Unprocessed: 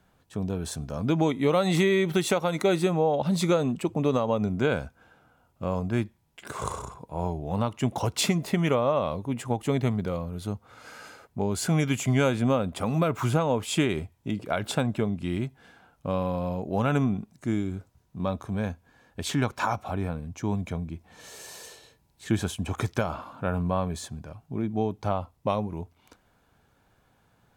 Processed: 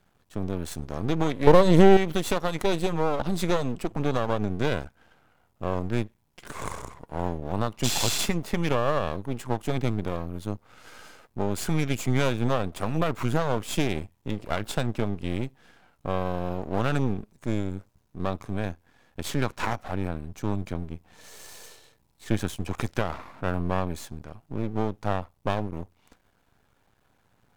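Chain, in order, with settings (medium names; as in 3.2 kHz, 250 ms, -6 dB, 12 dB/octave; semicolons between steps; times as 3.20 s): 1.47–1.97 s: resonant low shelf 630 Hz +7 dB, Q 3; 7.87–8.16 s: spectral replace 1.6–8.5 kHz after; half-wave rectifier; trim +2 dB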